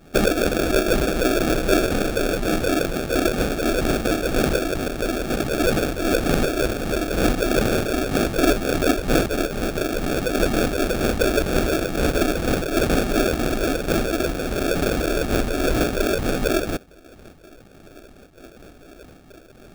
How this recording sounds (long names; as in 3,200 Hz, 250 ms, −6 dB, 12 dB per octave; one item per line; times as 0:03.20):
phaser sweep stages 12, 2.1 Hz, lowest notch 140–1,100 Hz
aliases and images of a low sample rate 1,000 Hz, jitter 0%
amplitude modulation by smooth noise